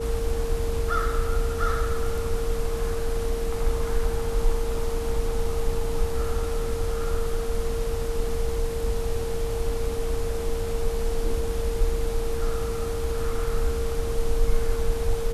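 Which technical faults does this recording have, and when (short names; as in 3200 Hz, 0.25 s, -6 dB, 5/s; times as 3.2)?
tone 460 Hz -29 dBFS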